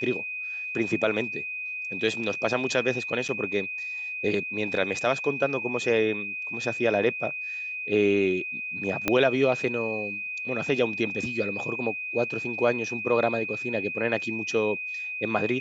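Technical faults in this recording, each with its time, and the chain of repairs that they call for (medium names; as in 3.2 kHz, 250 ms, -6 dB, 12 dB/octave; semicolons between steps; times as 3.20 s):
whine 2.5 kHz -31 dBFS
3.28–3.29 s: dropout 8.3 ms
9.08 s: pop -8 dBFS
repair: de-click; band-stop 2.5 kHz, Q 30; interpolate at 3.28 s, 8.3 ms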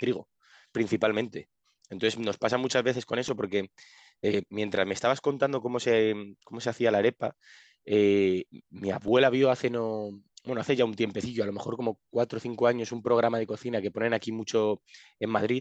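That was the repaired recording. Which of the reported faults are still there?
9.08 s: pop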